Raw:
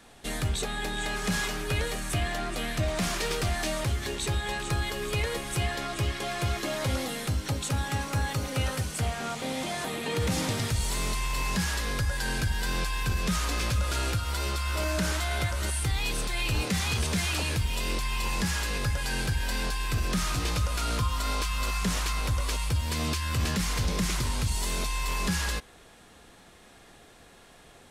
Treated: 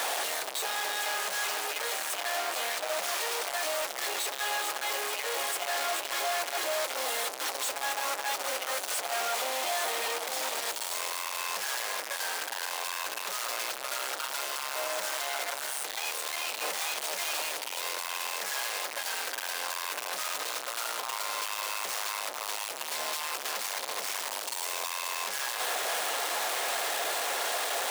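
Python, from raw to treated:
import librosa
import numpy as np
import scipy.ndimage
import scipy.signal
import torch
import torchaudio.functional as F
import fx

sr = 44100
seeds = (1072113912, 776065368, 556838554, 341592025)

y = np.sign(x) * np.sqrt(np.mean(np.square(x)))
y = fx.ladder_highpass(y, sr, hz=490.0, resonance_pct=30)
y = y * librosa.db_to_amplitude(5.0)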